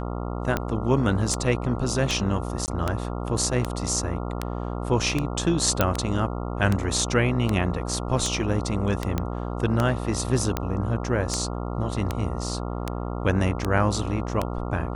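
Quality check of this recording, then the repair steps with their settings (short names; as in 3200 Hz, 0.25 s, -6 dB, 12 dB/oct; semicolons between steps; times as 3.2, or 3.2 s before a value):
buzz 60 Hz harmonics 23 -30 dBFS
tick 78 rpm -10 dBFS
2.66–2.68 gap 19 ms
5.81 pop -5 dBFS
9.18 pop -12 dBFS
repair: de-click; de-hum 60 Hz, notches 23; interpolate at 2.66, 19 ms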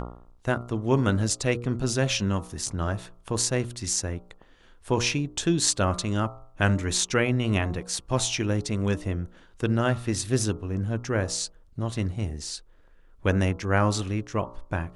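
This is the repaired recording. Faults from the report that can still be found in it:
5.81 pop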